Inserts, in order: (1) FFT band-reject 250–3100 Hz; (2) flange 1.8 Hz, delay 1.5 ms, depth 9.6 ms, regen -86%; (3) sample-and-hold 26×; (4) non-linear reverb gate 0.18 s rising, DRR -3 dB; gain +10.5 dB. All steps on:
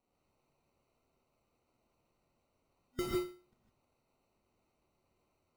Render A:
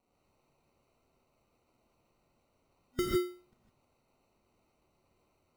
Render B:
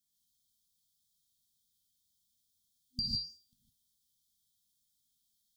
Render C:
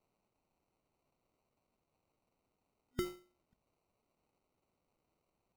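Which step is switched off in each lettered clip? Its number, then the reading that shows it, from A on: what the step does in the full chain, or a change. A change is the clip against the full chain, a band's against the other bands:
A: 2, loudness change +4.5 LU; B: 3, 4 kHz band +21.5 dB; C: 4, crest factor change +5.0 dB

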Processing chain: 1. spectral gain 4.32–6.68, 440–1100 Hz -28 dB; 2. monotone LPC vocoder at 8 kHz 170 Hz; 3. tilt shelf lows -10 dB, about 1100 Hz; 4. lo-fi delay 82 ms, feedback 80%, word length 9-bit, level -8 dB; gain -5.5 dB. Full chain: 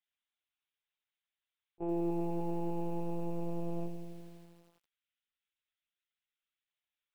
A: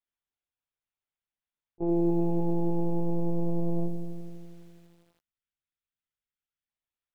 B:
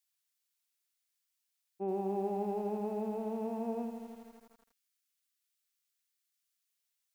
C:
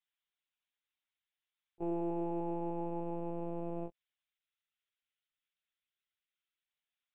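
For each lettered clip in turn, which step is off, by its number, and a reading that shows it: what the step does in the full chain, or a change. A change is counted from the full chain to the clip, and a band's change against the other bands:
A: 3, 1 kHz band -6.0 dB; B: 2, 250 Hz band -5.0 dB; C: 4, 125 Hz band -4.0 dB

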